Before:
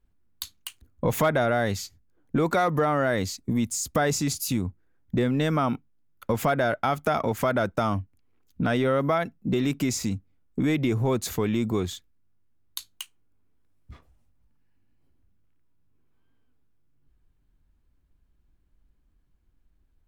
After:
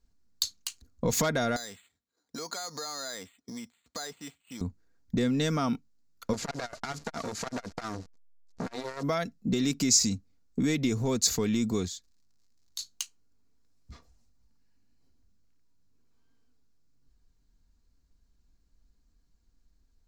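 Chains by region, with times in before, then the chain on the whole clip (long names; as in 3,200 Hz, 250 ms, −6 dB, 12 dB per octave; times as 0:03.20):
0:01.56–0:04.61: high-pass filter 950 Hz 6 dB per octave + downward compressor 4 to 1, threshold −35 dBFS + bad sample-rate conversion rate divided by 8×, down filtered, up hold
0:06.33–0:09.03: linear delta modulator 64 kbit/s, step −41.5 dBFS + high-shelf EQ 4,900 Hz −3 dB + saturating transformer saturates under 1,100 Hz
0:11.87–0:12.78: downward compressor 1.5 to 1, threshold −57 dBFS + surface crackle 140 per second −65 dBFS
whole clip: flat-topped bell 5,500 Hz +12.5 dB 1.1 octaves; comb filter 4.3 ms, depth 33%; dynamic equaliser 830 Hz, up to −5 dB, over −36 dBFS, Q 0.8; level −2.5 dB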